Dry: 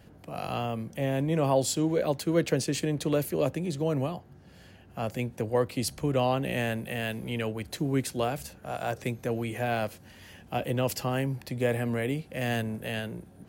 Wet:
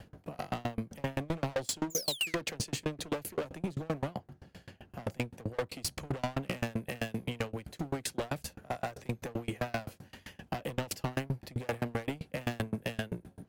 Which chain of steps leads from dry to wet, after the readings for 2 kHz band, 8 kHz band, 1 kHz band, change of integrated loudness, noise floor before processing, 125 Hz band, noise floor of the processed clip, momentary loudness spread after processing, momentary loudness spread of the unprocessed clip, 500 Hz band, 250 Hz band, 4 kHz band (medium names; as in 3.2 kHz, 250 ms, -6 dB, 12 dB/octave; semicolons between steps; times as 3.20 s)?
-4.5 dB, -2.5 dB, -6.5 dB, -7.0 dB, -53 dBFS, -7.0 dB, -66 dBFS, 8 LU, 9 LU, -9.5 dB, -7.5 dB, -1.5 dB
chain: treble shelf 7.3 kHz -4.5 dB; in parallel at -2.5 dB: compression, threshold -35 dBFS, peak gain reduction 15.5 dB; on the sum: painted sound fall, 1.90–2.35 s, 1.9–7.4 kHz -22 dBFS; hard clipper -28 dBFS, distortion -6 dB; sawtooth tremolo in dB decaying 7.7 Hz, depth 31 dB; trim +3.5 dB